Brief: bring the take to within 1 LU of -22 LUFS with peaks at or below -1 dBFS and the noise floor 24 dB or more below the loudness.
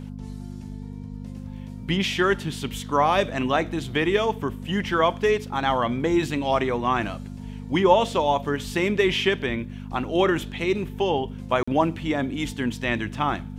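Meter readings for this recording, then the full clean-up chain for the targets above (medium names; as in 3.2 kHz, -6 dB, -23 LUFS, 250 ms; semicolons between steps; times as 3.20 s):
dropouts 1; longest dropout 45 ms; hum 50 Hz; highest harmonic 250 Hz; hum level -33 dBFS; loudness -24.0 LUFS; peak level -5.5 dBFS; loudness target -22.0 LUFS
-> interpolate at 11.63 s, 45 ms; de-hum 50 Hz, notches 5; trim +2 dB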